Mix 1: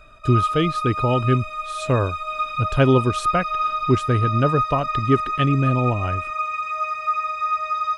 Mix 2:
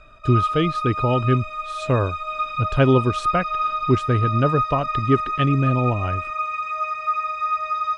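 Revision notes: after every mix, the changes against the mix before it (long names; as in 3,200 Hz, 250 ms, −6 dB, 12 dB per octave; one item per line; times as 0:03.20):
master: add high-frequency loss of the air 57 metres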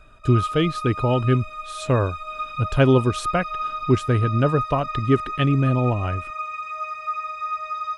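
background −5.0 dB
master: remove high-frequency loss of the air 57 metres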